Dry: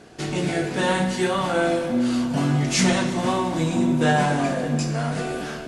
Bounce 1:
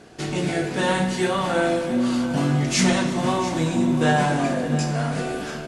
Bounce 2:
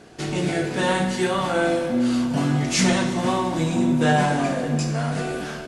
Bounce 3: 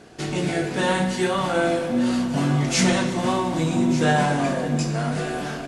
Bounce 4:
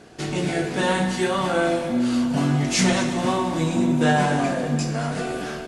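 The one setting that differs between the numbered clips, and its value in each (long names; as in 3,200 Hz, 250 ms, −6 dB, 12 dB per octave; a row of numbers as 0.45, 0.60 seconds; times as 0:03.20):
single-tap delay, delay time: 688, 73, 1,190, 225 milliseconds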